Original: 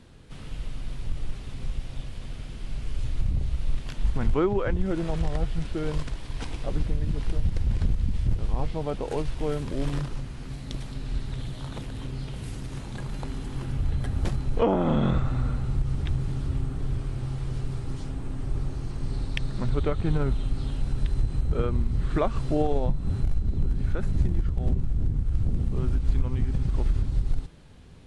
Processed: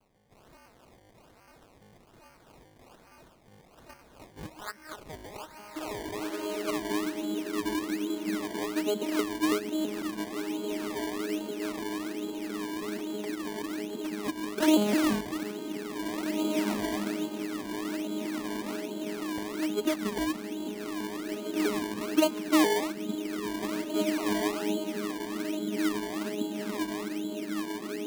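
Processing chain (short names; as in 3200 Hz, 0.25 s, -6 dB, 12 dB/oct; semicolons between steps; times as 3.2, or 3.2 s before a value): arpeggiated vocoder bare fifth, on G#3, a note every 0.164 s; low shelf 130 Hz +10 dB; diffused feedback echo 1.904 s, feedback 52%, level -3.5 dB; high-pass sweep 2500 Hz -> 350 Hz, 4.22–7; dynamic EQ 390 Hz, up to -8 dB, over -35 dBFS, Q 1.1; decimation with a swept rate 23×, swing 100% 1.2 Hz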